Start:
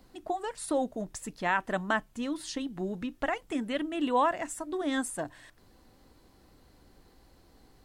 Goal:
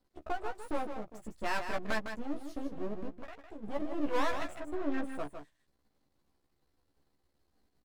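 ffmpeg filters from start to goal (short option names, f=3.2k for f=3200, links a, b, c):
-filter_complex "[0:a]asettb=1/sr,asplit=3[a][b][c];[a]atrim=end=0.774[d];[b]atrim=start=0.77:end=1.18,asetpts=PTS-STARTPTS,afade=t=in:d=0.004:c=qsin,afade=t=out:st=0.406:d=0.004:c=qsin,highpass=f=500:p=1[e];[c]atrim=start=1.176[f];[d][e]acrossfade=d=0.004:c1=hsin:c2=qsin[g];[g][f]acrossfade=d=0.004:c1=qsin:c2=hsin,afwtdn=0.0158,asplit=3[h][i][j];[h]afade=t=out:st=3.08:d=0.02[k];[i]acompressor=threshold=-44dB:ratio=6,afade=t=in:st=3.08:d=0.02,afade=t=out:st=3.62:d=0.02[l];[j]afade=t=in:st=3.62:d=0.02[m];[k][l][m]amix=inputs=3:normalize=0,aeval=exprs='max(val(0),0)':c=same,asettb=1/sr,asplit=3[n][o][p];[n]atrim=end=4.544[q];[o]atrim=start=4.54:end=5.12,asetpts=PTS-STARTPTS,afade=t=in:d=0.004:c=qsin,afade=t=out:st=0.576:d=0.004:c=qsin,highshelf=f=4.5k:g=-9[r];[p]atrim=start=5.116[s];[q][r]acrossfade=d=0.004:c1=hsin:c2=qsin[t];[t][s]acrossfade=d=0.004:c1=qsin:c2=hsin,asoftclip=type=tanh:threshold=-23.5dB,asplit=2[u][v];[v]adelay=14,volume=-3.5dB[w];[u][w]amix=inputs=2:normalize=0,aecho=1:1:156:0.398"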